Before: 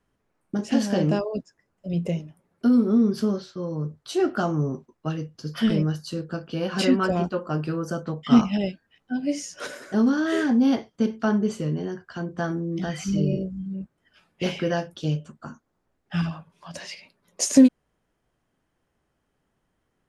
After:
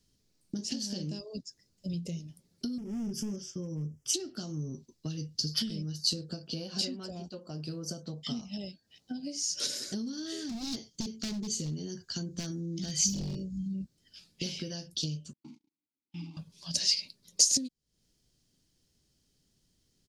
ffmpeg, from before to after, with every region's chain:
ffmpeg -i in.wav -filter_complex "[0:a]asettb=1/sr,asplit=3[link_01][link_02][link_03];[link_01]atrim=end=2.784[link_04];[link_02]atrim=start=2.78:end=4.14,asetpts=PTS-STARTPTS,afade=type=in:duration=0.004:curve=qsin,afade=type=out:start_time=1.356:duration=0.004:curve=qsin,volume=22.5dB,asoftclip=hard,volume=-22.5dB,asuperstop=centerf=4100:order=4:qfactor=1.5[link_05];[link_03]atrim=start=4.136[link_06];[link_04][link_05]acrossfade=duration=0.004:curve1=hsin:curve2=qsin[link_07];[link_07][link_06]acrossfade=duration=0.004:curve1=qsin:curve2=hsin,asettb=1/sr,asplit=3[link_08][link_09][link_10];[link_08]atrim=end=6.044[link_11];[link_09]atrim=start=6.04:end=9.37,asetpts=PTS-STARTPTS,afade=type=in:duration=0.004:curve=qsin,afade=type=out:start_time=3.326:duration=0.004:curve=qsin,highpass=45,equalizer=frequency=700:width=1.5:gain=10[link_12];[link_10]atrim=start=9.366[link_13];[link_11][link_12]acrossfade=duration=0.004:curve1=hsin:curve2=qsin[link_14];[link_14][link_13]acrossfade=duration=0.004:curve1=qsin:curve2=hsin,asettb=1/sr,asplit=3[link_15][link_16][link_17];[link_15]atrim=end=10.494[link_18];[link_16]atrim=start=10.49:end=13.69,asetpts=PTS-STARTPTS,afade=type=in:duration=0.004:curve=qsin,afade=type=out:start_time=3.196:duration=0.004:curve=qsin,equalizer=frequency=6700:width=6.8:gain=10.5,aeval=exprs='0.1*(abs(mod(val(0)/0.1+3,4)-2)-1)':channel_layout=same[link_19];[link_17]atrim=start=13.686[link_20];[link_18][link_19]acrossfade=duration=0.004:curve1=hsin:curve2=qsin[link_21];[link_21][link_20]acrossfade=duration=0.004:curve1=qsin:curve2=hsin,asettb=1/sr,asplit=3[link_22][link_23][link_24];[link_22]atrim=end=15.334[link_25];[link_23]atrim=start=15.33:end=16.37,asetpts=PTS-STARTPTS,afade=type=in:duration=0.004:curve=qsin,afade=type=out:start_time=1.036:duration=0.004:curve=qsin,aeval=exprs='val(0)+0.5*0.0112*sgn(val(0))':channel_layout=same,asplit=3[link_26][link_27][link_28];[link_26]bandpass=frequency=300:width_type=q:width=8,volume=0dB[link_29];[link_27]bandpass=frequency=870:width_type=q:width=8,volume=-6dB[link_30];[link_28]bandpass=frequency=2240:width_type=q:width=8,volume=-9dB[link_31];[link_29][link_30][link_31]amix=inputs=3:normalize=0,agate=range=-37dB:threshold=-52dB:ratio=16:release=100:detection=peak[link_32];[link_24]atrim=start=16.366[link_33];[link_25][link_32]acrossfade=duration=0.004:curve1=hsin:curve2=qsin[link_34];[link_34][link_33]acrossfade=duration=0.004:curve1=qsin:curve2=hsin,acompressor=threshold=-33dB:ratio=16,firequalizer=gain_entry='entry(150,0);entry(740,-15);entry(1200,-16);entry(4500,15);entry(9200,6)':delay=0.05:min_phase=1,volume=2dB" out.wav

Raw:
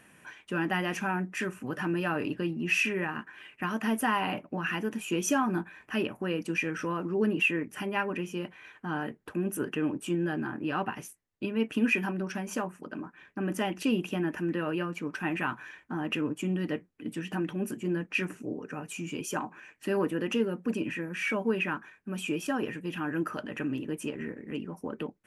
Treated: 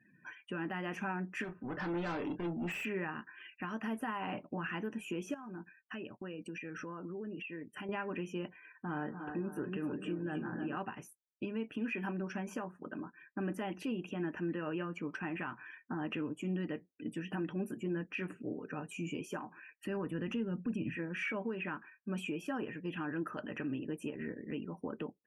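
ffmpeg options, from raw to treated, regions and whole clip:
ffmpeg -i in.wav -filter_complex "[0:a]asettb=1/sr,asplit=3[link_01][link_02][link_03];[link_01]atrim=end=1.444[link_04];[link_02]atrim=start=1.44:end=2.85,asetpts=PTS-STARTPTS,afade=type=in:duration=0.004:curve=qsin,afade=type=out:start_time=1.406:duration=0.004:curve=qsin,adynamicsmooth=sensitivity=7:basefreq=1300,volume=33.5dB,asoftclip=hard,volume=-33.5dB,asplit=2[link_05][link_06];[link_06]adelay=29,volume=-8.5dB[link_07];[link_05][link_07]amix=inputs=2:normalize=0,atrim=end_sample=62181[link_08];[link_03]atrim=start=2.846[link_09];[link_04][link_08]acrossfade=duration=0.004:curve1=hsin:curve2=qsin[link_10];[link_10][link_09]acrossfade=duration=0.004:curve1=qsin:curve2=hsin,asettb=1/sr,asplit=3[link_11][link_12][link_13];[link_11]atrim=end=5.344[link_14];[link_12]atrim=start=5.34:end=7.89,asetpts=PTS-STARTPTS,afade=type=in:duration=0.004:curve=qsin,afade=type=out:start_time=2.546:duration=0.004:curve=qsin,acompressor=threshold=-38dB:ratio=6:attack=3.2:release=140:knee=1:detection=peak,agate=range=-33dB:threshold=-44dB:ratio=3:release=100:detection=peak[link_15];[link_13]atrim=start=7.886[link_16];[link_14][link_15]acrossfade=duration=0.004:curve1=hsin:curve2=qsin[link_17];[link_17][link_16]acrossfade=duration=0.004:curve1=qsin:curve2=hsin,asettb=1/sr,asplit=3[link_18][link_19][link_20];[link_18]atrim=end=8.594[link_21];[link_19]atrim=start=8.59:end=10.77,asetpts=PTS-STARTPTS,afade=type=in:duration=0.004:curve=qsin,afade=type=out:start_time=2.176:duration=0.004:curve=qsin,aemphasis=mode=reproduction:type=75kf,acompressor=threshold=-35dB:ratio=1.5:attack=3.2:release=140:knee=1:detection=peak,aecho=1:1:40|202|288|304|560:0.224|0.126|0.299|0.422|0.237,atrim=end_sample=96138[link_22];[link_20]atrim=start=10.766[link_23];[link_21][link_22]acrossfade=duration=0.004:curve1=hsin:curve2=qsin[link_24];[link_24][link_23]acrossfade=duration=0.004:curve1=qsin:curve2=hsin,asettb=1/sr,asplit=3[link_25][link_26][link_27];[link_25]atrim=end=19.424[link_28];[link_26]atrim=start=19.42:end=20.96,asetpts=PTS-STARTPTS,afade=type=in:duration=0.004:curve=qsin,afade=type=out:start_time=1.536:duration=0.004:curve=qsin,asubboost=boost=11:cutoff=190,acompressor=threshold=-32dB:ratio=1.5:attack=3.2:release=140:knee=1:detection=peak[link_29];[link_27]atrim=start=20.956[link_30];[link_28][link_29]acrossfade=duration=0.004:curve1=hsin:curve2=qsin[link_31];[link_31][link_30]acrossfade=duration=0.004:curve1=qsin:curve2=hsin,afftdn=noise_reduction=34:noise_floor=-52,acrossover=split=2600[link_32][link_33];[link_33]acompressor=threshold=-48dB:ratio=4:attack=1:release=60[link_34];[link_32][link_34]amix=inputs=2:normalize=0,alimiter=level_in=2.5dB:limit=-24dB:level=0:latency=1:release=306,volume=-2.5dB,volume=-2dB" out.wav

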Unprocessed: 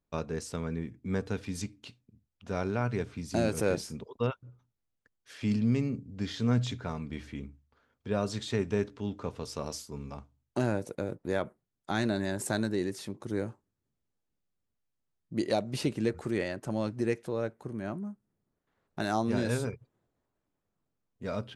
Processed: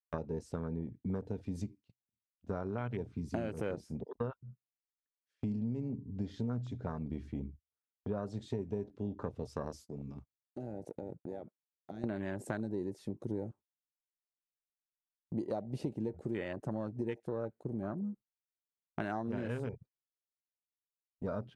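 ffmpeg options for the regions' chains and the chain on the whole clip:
ffmpeg -i in.wav -filter_complex "[0:a]asettb=1/sr,asplit=3[link_01][link_02][link_03];[link_01]atrim=end=9.874[link_04];[link_02]atrim=start=9.87:end=12.04,asetpts=PTS-STARTPTS,afade=type=in:duration=0.004:curve=qsin,afade=type=out:start_time=2.166:duration=0.004:curve=qsin,highpass=98,acompressor=threshold=-40dB:ratio=6:attack=3.2:release=140:knee=1:detection=peak[link_05];[link_03]atrim=start=12.036[link_06];[link_04][link_05]acrossfade=duration=0.004:curve1=hsin:curve2=qsin[link_07];[link_07][link_06]acrossfade=duration=0.004:curve1=qsin:curve2=hsin,afwtdn=0.0112,agate=range=-23dB:threshold=-51dB:ratio=16:detection=peak,acompressor=threshold=-36dB:ratio=6,volume=2.5dB" out.wav

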